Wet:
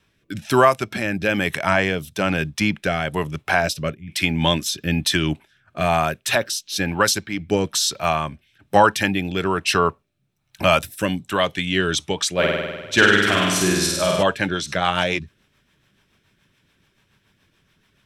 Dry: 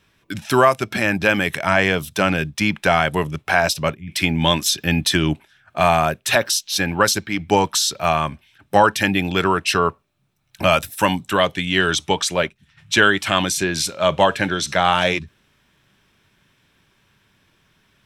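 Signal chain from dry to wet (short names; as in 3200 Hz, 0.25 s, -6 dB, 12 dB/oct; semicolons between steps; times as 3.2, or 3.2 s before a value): rotary speaker horn 1.1 Hz, later 7 Hz, at 11.58; 12.34–14.23 flutter echo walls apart 8.5 m, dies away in 1.3 s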